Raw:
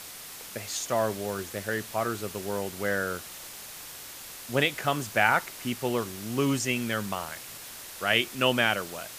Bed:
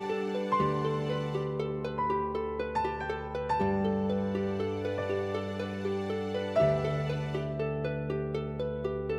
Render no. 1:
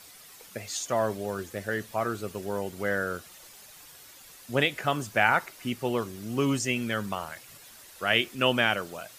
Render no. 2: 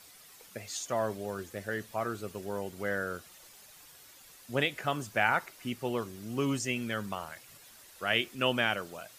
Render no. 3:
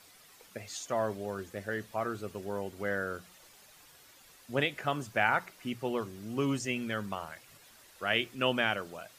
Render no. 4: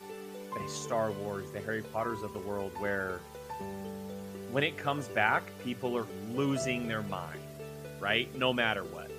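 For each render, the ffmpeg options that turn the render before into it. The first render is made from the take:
ffmpeg -i in.wav -af "afftdn=noise_reduction=10:noise_floor=-43" out.wav
ffmpeg -i in.wav -af "volume=-4.5dB" out.wav
ffmpeg -i in.wav -af "highshelf=frequency=4900:gain=-5.5,bandreject=frequency=60:width_type=h:width=6,bandreject=frequency=120:width_type=h:width=6,bandreject=frequency=180:width_type=h:width=6" out.wav
ffmpeg -i in.wav -i bed.wav -filter_complex "[1:a]volume=-12dB[link_01];[0:a][link_01]amix=inputs=2:normalize=0" out.wav

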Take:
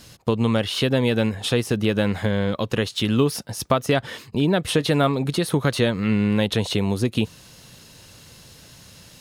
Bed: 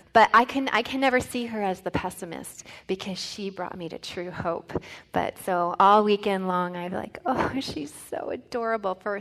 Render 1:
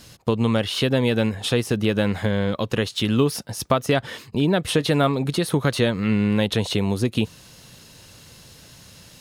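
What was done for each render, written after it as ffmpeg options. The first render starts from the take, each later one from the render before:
ffmpeg -i in.wav -af anull out.wav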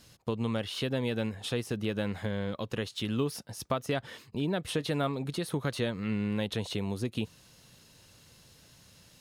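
ffmpeg -i in.wav -af "volume=-11dB" out.wav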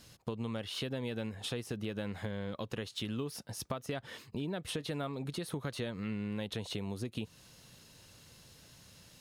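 ffmpeg -i in.wav -af "acompressor=threshold=-36dB:ratio=3" out.wav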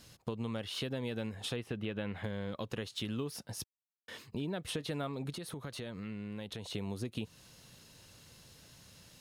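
ffmpeg -i in.wav -filter_complex "[0:a]asettb=1/sr,asplit=3[link_01][link_02][link_03];[link_01]atrim=end=1.564[link_04];[link_02]atrim=start=1.56:end=2.24,asetpts=PTS-STARTPTS,afade=type=in:duration=0.004:curve=qsin,afade=type=out:start_time=0.676:duration=0.004:curve=qsin,highshelf=frequency=4100:width_type=q:width=1.5:gain=-10.5[link_05];[link_03]atrim=start=2.236[link_06];[link_04][link_05]acrossfade=duration=0.004:curve1=hsin:curve2=qsin[link_07];[link_07][link_06]acrossfade=duration=0.004:curve1=qsin:curve2=hsin,asettb=1/sr,asplit=3[link_08][link_09][link_10];[link_08]atrim=end=5.324[link_11];[link_09]atrim=start=5.32:end=6.74,asetpts=PTS-STARTPTS,afade=type=in:duration=0.004:curve=qsin,afade=type=out:start_time=1.416:duration=0.004:curve=qsin,acompressor=threshold=-40dB:ratio=2.5:attack=3.2:release=140:knee=1:detection=peak[link_12];[link_10]atrim=start=6.736[link_13];[link_11][link_12]acrossfade=duration=0.004:curve1=hsin:curve2=qsin[link_14];[link_14][link_13]acrossfade=duration=0.004:curve1=qsin:curve2=hsin,asplit=3[link_15][link_16][link_17];[link_15]atrim=end=3.64,asetpts=PTS-STARTPTS,afade=type=out:start_time=3.636:duration=0.004:curve=hsin[link_18];[link_16]atrim=start=3.64:end=4.08,asetpts=PTS-STARTPTS,volume=0[link_19];[link_17]atrim=start=4.08,asetpts=PTS-STARTPTS,afade=type=in:duration=0.004:curve=hsin[link_20];[link_18][link_19][link_20]concat=n=3:v=0:a=1" out.wav

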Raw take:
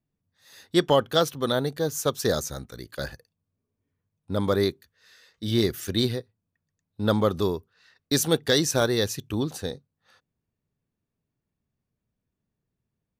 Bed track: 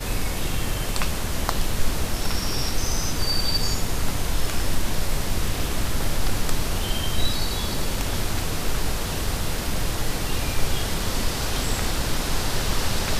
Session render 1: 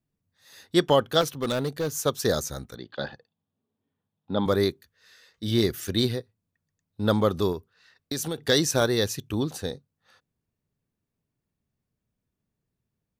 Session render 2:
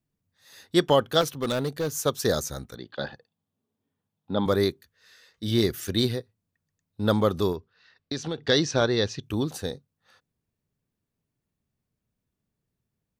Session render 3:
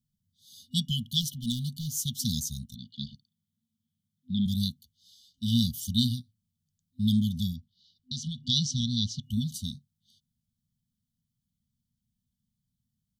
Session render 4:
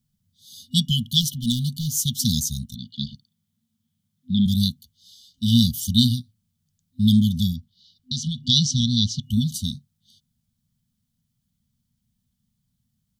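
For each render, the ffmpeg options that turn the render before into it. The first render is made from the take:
ffmpeg -i in.wav -filter_complex "[0:a]asettb=1/sr,asplit=3[link_01][link_02][link_03];[link_01]atrim=end=1.214[link_04];[link_02]atrim=start=1.21:end=2.04,asetpts=PTS-STARTPTS,afade=type=in:duration=0.004:curve=qsin,afade=type=out:start_time=0.826:duration=0.004:curve=qsin,volume=22.5dB,asoftclip=hard,volume=-22.5dB[link_05];[link_03]atrim=start=2.036[link_06];[link_04][link_05]acrossfade=duration=0.004:curve1=hsin:curve2=qsin[link_07];[link_07][link_06]acrossfade=duration=0.004:curve1=qsin:curve2=hsin,asettb=1/sr,asplit=3[link_08][link_09][link_10];[link_08]atrim=end=2.754[link_11];[link_09]atrim=start=2.75:end=4.46,asetpts=PTS-STARTPTS,afade=type=in:duration=0.004:curve=qsin,afade=type=out:start_time=1.706:duration=0.004:curve=qsin,highpass=140,equalizer=frequency=220:width_type=q:width=4:gain=4,equalizer=frequency=810:width_type=q:width=4:gain=8,equalizer=frequency=2200:width_type=q:width=4:gain=-6,equalizer=frequency=3500:width_type=q:width=4:gain=7,lowpass=frequency=3900:width=0.5412,lowpass=frequency=3900:width=1.3066[link_12];[link_10]atrim=start=4.456[link_13];[link_11][link_12]acrossfade=duration=0.004:curve1=hsin:curve2=qsin[link_14];[link_14][link_13]acrossfade=duration=0.004:curve1=qsin:curve2=hsin,asettb=1/sr,asplit=3[link_15][link_16][link_17];[link_15]atrim=end=7.524[link_18];[link_16]atrim=start=7.52:end=8.38,asetpts=PTS-STARTPTS,afade=type=in:duration=0.004:curve=qsin,afade=type=out:start_time=0.856:duration=0.004:curve=qsin,acompressor=threshold=-26dB:ratio=6:attack=3.2:release=140:knee=1:detection=peak[link_19];[link_17]atrim=start=8.376[link_20];[link_18][link_19]acrossfade=duration=0.004:curve1=hsin:curve2=qsin[link_21];[link_21][link_20]acrossfade=duration=0.004:curve1=qsin:curve2=hsin" out.wav
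ffmpeg -i in.wav -filter_complex "[0:a]asettb=1/sr,asplit=3[link_01][link_02][link_03];[link_01]atrim=end=7.564[link_04];[link_02]atrim=start=7.56:end=9.23,asetpts=PTS-STARTPTS,afade=type=in:duration=0.004:curve=qsin,afade=type=out:start_time=1.666:duration=0.004:curve=qsin,lowpass=frequency=5400:width=0.5412,lowpass=frequency=5400:width=1.3066[link_05];[link_03]atrim=start=9.226[link_06];[link_04][link_05]acrossfade=duration=0.004:curve1=hsin:curve2=qsin[link_07];[link_07][link_06]acrossfade=duration=0.004:curve1=qsin:curve2=hsin" out.wav
ffmpeg -i in.wav -af "afftfilt=real='re*(1-between(b*sr/4096,250,2900))':imag='im*(1-between(b*sr/4096,250,2900))':win_size=4096:overlap=0.75,equalizer=frequency=220:width=1.5:gain=2" out.wav
ffmpeg -i in.wav -af "volume=8dB" out.wav

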